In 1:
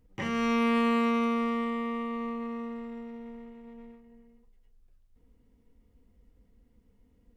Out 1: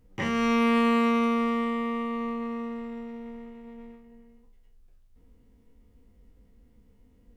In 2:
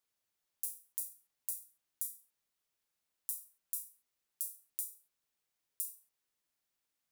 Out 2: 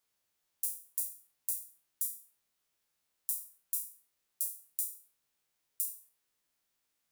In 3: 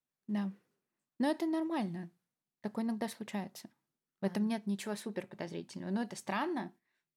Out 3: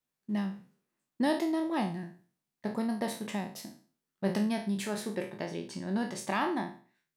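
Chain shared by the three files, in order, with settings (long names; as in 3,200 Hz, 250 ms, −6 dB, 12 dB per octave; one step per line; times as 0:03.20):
peak hold with a decay on every bin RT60 0.41 s
level +3 dB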